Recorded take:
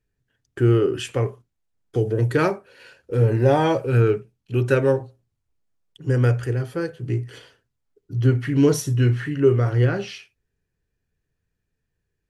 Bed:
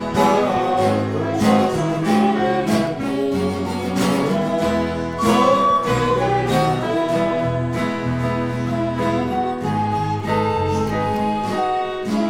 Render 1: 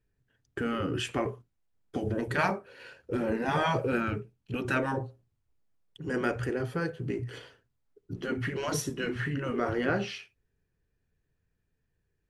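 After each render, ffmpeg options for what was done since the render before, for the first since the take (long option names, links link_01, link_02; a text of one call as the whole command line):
ffmpeg -i in.wav -af "afftfilt=real='re*lt(hypot(re,im),0.447)':imag='im*lt(hypot(re,im),0.447)':win_size=1024:overlap=0.75,highshelf=frequency=3700:gain=-7" out.wav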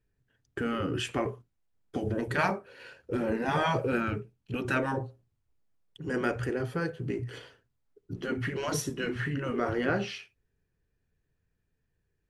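ffmpeg -i in.wav -af anull out.wav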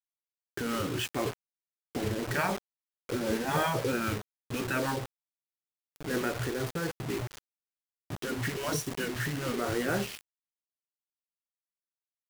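ffmpeg -i in.wav -af "acrusher=bits=5:mix=0:aa=0.000001,tremolo=f=3.9:d=0.31" out.wav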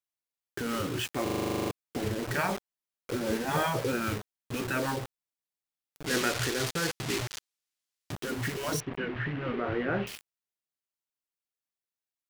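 ffmpeg -i in.wav -filter_complex "[0:a]asettb=1/sr,asplit=3[link_01][link_02][link_03];[link_01]atrim=end=6.064[link_04];[link_02]atrim=start=6.06:end=8.12,asetpts=PTS-STARTPTS,afade=type=in:duration=0.004:curve=qsin,afade=type=out:start_time=2.056:duration=0.004:curve=qsin,equalizer=frequency=5100:width=0.33:gain=10.5[link_05];[link_03]atrim=start=8.116[link_06];[link_04][link_05]acrossfade=duration=0.004:curve1=hsin:curve2=qsin[link_07];[link_07][link_06]acrossfade=duration=0.004:curve1=qsin:curve2=hsin,asettb=1/sr,asplit=3[link_08][link_09][link_10];[link_08]atrim=end=8.804[link_11];[link_09]atrim=start=8.8:end=10.07,asetpts=PTS-STARTPTS,afade=type=in:duration=0.004:curve=qsin,afade=type=out:start_time=1.266:duration=0.004:curve=qsin,lowpass=frequency=2800:width=0.5412,lowpass=frequency=2800:width=1.3066[link_12];[link_10]atrim=start=10.066[link_13];[link_11][link_12]acrossfade=duration=0.004:curve1=hsin:curve2=qsin[link_14];[link_14][link_13]acrossfade=duration=0.004:curve1=qsin:curve2=hsin,asplit=13[link_15][link_16][link_17][link_18][link_19][link_20][link_21][link_22][link_23][link_24][link_25][link_26][link_27];[link_15]atrim=end=1.272[link_28];[link_16]atrim=start=1.228:end=1.272[link_29];[link_17]atrim=start=1.228:end=1.272[link_30];[link_18]atrim=start=1.228:end=1.272[link_31];[link_19]atrim=start=1.228:end=1.272[link_32];[link_20]atrim=start=1.228:end=1.272[link_33];[link_21]atrim=start=1.228:end=1.272[link_34];[link_22]atrim=start=1.228:end=1.272[link_35];[link_23]atrim=start=1.228:end=1.272[link_36];[link_24]atrim=start=1.228:end=1.272[link_37];[link_25]atrim=start=1.228:end=1.272[link_38];[link_26]atrim=start=1.228:end=1.272[link_39];[link_27]atrim=start=1.708[link_40];[link_28][link_29]acrossfade=duration=0.004:curve1=hsin:curve2=hsin[link_41];[link_41][link_30]acrossfade=duration=0.004:curve1=hsin:curve2=hsin[link_42];[link_42][link_31]acrossfade=duration=0.004:curve1=hsin:curve2=hsin[link_43];[link_43][link_32]acrossfade=duration=0.004:curve1=hsin:curve2=hsin[link_44];[link_44][link_33]acrossfade=duration=0.004:curve1=hsin:curve2=hsin[link_45];[link_45][link_34]acrossfade=duration=0.004:curve1=hsin:curve2=hsin[link_46];[link_46][link_35]acrossfade=duration=0.004:curve1=hsin:curve2=hsin[link_47];[link_47][link_36]acrossfade=duration=0.004:curve1=hsin:curve2=hsin[link_48];[link_48][link_37]acrossfade=duration=0.004:curve1=hsin:curve2=hsin[link_49];[link_49][link_38]acrossfade=duration=0.004:curve1=hsin:curve2=hsin[link_50];[link_50][link_39]acrossfade=duration=0.004:curve1=hsin:curve2=hsin[link_51];[link_51][link_40]acrossfade=duration=0.004:curve1=hsin:curve2=hsin" out.wav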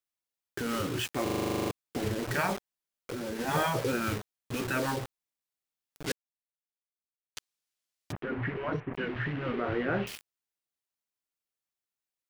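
ffmpeg -i in.wav -filter_complex "[0:a]asettb=1/sr,asplit=3[link_01][link_02][link_03];[link_01]atrim=end=2.534[link_04];[link_02]atrim=start=2.53:end=3.39,asetpts=PTS-STARTPTS,afade=type=in:duration=0.004:curve=qsin,afade=type=out:start_time=0.856:duration=0.004:curve=qsin,acompressor=threshold=-32dB:ratio=6:attack=3.2:release=140:knee=1:detection=peak[link_05];[link_03]atrim=start=3.386[link_06];[link_04][link_05]acrossfade=duration=0.004:curve1=hsin:curve2=qsin[link_07];[link_07][link_06]acrossfade=duration=0.004:curve1=qsin:curve2=hsin,asplit=3[link_08][link_09][link_10];[link_08]afade=type=out:start_time=8.11:duration=0.02[link_11];[link_09]lowpass=frequency=2300:width=0.5412,lowpass=frequency=2300:width=1.3066,afade=type=in:start_time=8.11:duration=0.02,afade=type=out:start_time=8.93:duration=0.02[link_12];[link_10]afade=type=in:start_time=8.93:duration=0.02[link_13];[link_11][link_12][link_13]amix=inputs=3:normalize=0,asplit=3[link_14][link_15][link_16];[link_14]atrim=end=6.12,asetpts=PTS-STARTPTS,afade=type=out:start_time=6.116:duration=0.004:curve=hsin[link_17];[link_15]atrim=start=6.12:end=7.36,asetpts=PTS-STARTPTS,volume=0[link_18];[link_16]atrim=start=7.36,asetpts=PTS-STARTPTS,afade=type=in:duration=0.004:curve=hsin[link_19];[link_17][link_18][link_19]concat=n=3:v=0:a=1" out.wav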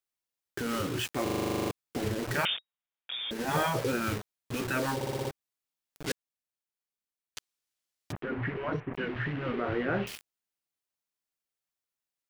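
ffmpeg -i in.wav -filter_complex "[0:a]asettb=1/sr,asplit=3[link_01][link_02][link_03];[link_01]atrim=end=2.454[link_04];[link_02]atrim=start=2.45:end=3.31,asetpts=PTS-STARTPTS,afade=type=in:duration=0.004:curve=qsin,afade=type=out:start_time=0.856:duration=0.004:curve=qsin,lowpass=frequency=3200:width_type=q:width=0.5098,lowpass=frequency=3200:width_type=q:width=0.6013,lowpass=frequency=3200:width_type=q:width=0.9,lowpass=frequency=3200:width_type=q:width=2.563,afreqshift=-3800[link_05];[link_03]atrim=start=3.306[link_06];[link_04][link_05]acrossfade=duration=0.004:curve1=hsin:curve2=qsin[link_07];[link_07][link_06]acrossfade=duration=0.004:curve1=qsin:curve2=hsin,asplit=7[link_08][link_09][link_10][link_11][link_12][link_13][link_14];[link_08]atrim=end=5.012[link_15];[link_09]atrim=start=4.948:end=5.012[link_16];[link_10]atrim=start=4.948:end=5.012[link_17];[link_11]atrim=start=4.948:end=5.012[link_18];[link_12]atrim=start=4.948:end=5.012[link_19];[link_13]atrim=start=4.948:end=5.012[link_20];[link_14]atrim=start=5.308[link_21];[link_15][link_16]acrossfade=duration=0.004:curve1=hsin:curve2=hsin[link_22];[link_22][link_17]acrossfade=duration=0.004:curve1=hsin:curve2=hsin[link_23];[link_23][link_18]acrossfade=duration=0.004:curve1=hsin:curve2=hsin[link_24];[link_24][link_19]acrossfade=duration=0.004:curve1=hsin:curve2=hsin[link_25];[link_25][link_20]acrossfade=duration=0.004:curve1=hsin:curve2=hsin[link_26];[link_26][link_21]acrossfade=duration=0.004:curve1=hsin:curve2=hsin" out.wav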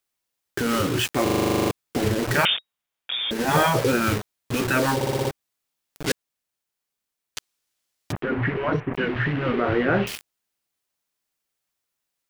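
ffmpeg -i in.wav -af "volume=9dB" out.wav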